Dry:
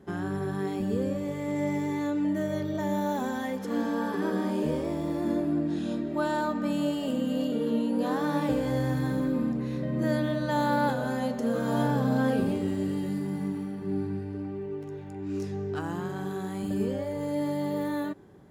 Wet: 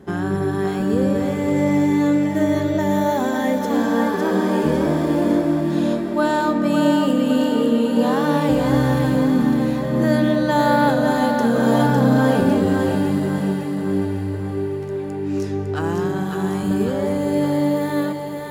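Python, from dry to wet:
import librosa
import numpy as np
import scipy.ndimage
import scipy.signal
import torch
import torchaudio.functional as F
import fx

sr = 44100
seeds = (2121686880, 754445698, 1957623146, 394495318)

y = fx.echo_split(x, sr, split_hz=520.0, low_ms=226, high_ms=554, feedback_pct=52, wet_db=-5.0)
y = F.gain(torch.from_numpy(y), 9.0).numpy()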